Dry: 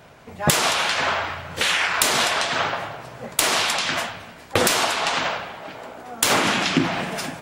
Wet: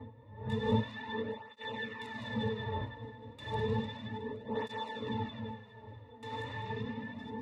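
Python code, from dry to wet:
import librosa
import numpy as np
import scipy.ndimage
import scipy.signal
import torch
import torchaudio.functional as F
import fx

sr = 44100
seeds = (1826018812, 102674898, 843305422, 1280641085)

p1 = fx.reverse_delay_fb(x, sr, ms=102, feedback_pct=52, wet_db=-1.0)
p2 = fx.dmg_wind(p1, sr, seeds[0], corner_hz=620.0, level_db=-19.0)
p3 = fx.peak_eq(p2, sr, hz=2800.0, db=9.5, octaves=0.25)
p4 = fx.octave_resonator(p3, sr, note='A', decay_s=0.16)
p5 = p4 + fx.echo_single(p4, sr, ms=817, db=-21.0, dry=0)
p6 = fx.flanger_cancel(p5, sr, hz=0.32, depth_ms=5.4)
y = p6 * 10.0 ** (-5.5 / 20.0)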